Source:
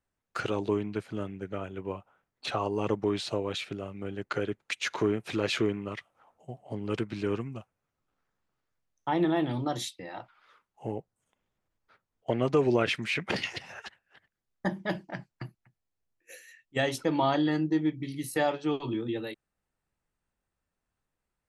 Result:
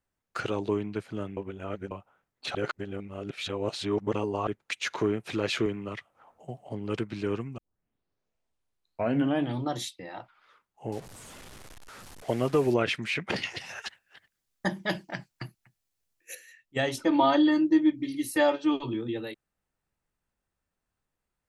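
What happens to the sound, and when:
1.37–1.91 s: reverse
2.55–4.47 s: reverse
5.66–6.69 s: three bands compressed up and down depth 40%
7.58 s: tape start 1.97 s
10.92–12.74 s: one-bit delta coder 64 kbps, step -41 dBFS
13.58–16.35 s: treble shelf 2.3 kHz +11 dB
16.97–18.84 s: comb 3.3 ms, depth 91%

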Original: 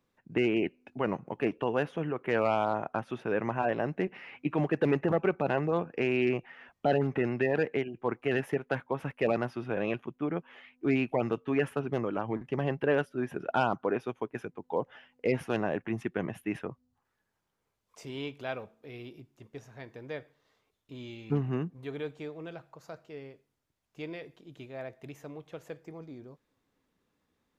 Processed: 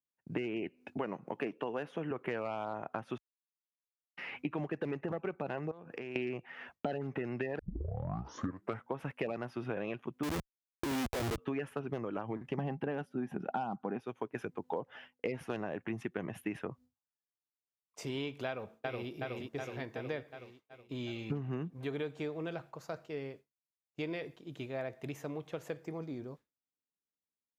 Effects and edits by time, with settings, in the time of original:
0.97–2.11 s: high-pass 160 Hz
3.18–4.17 s: mute
5.71–6.16 s: compression 12:1, threshold -42 dBFS
7.59 s: tape start 1.34 s
10.23–11.38 s: Schmitt trigger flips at -38 dBFS
12.58–14.00 s: small resonant body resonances 200/780 Hz, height 13 dB, ringing for 35 ms
18.47–19.11 s: echo throw 370 ms, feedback 65%, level -3 dB
whole clip: expander -52 dBFS; compression 12:1, threshold -37 dBFS; high-pass 53 Hz; trim +4 dB

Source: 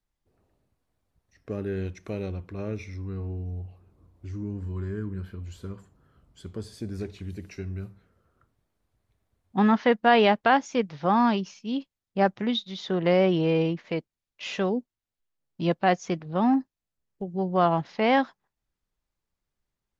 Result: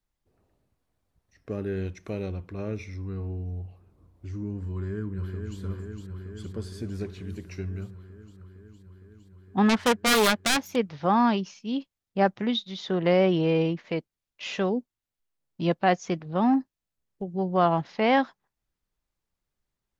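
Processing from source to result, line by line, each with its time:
4.72–5.60 s: echo throw 460 ms, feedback 80%, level -5.5 dB
9.69–10.76 s: self-modulated delay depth 0.84 ms

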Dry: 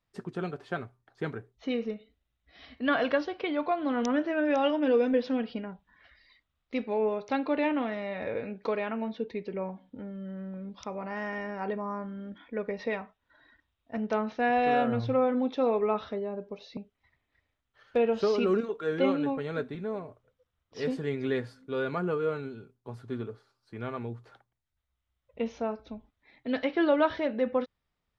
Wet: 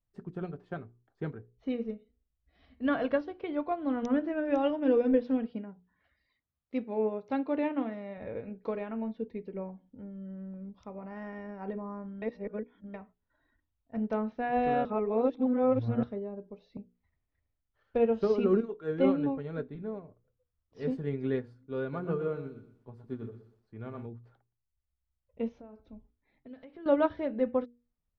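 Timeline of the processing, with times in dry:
5.47–8.18 s: high-pass 90 Hz
12.22–12.94 s: reverse
14.85–16.03 s: reverse
21.81–24.06 s: bit-crushed delay 120 ms, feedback 35%, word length 10-bit, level -9.5 dB
25.57–26.86 s: compression 8:1, threshold -37 dBFS
whole clip: tilt EQ -3 dB/octave; hum notches 60/120/180/240/300/360/420/480 Hz; upward expansion 1.5:1, over -38 dBFS; trim -2.5 dB

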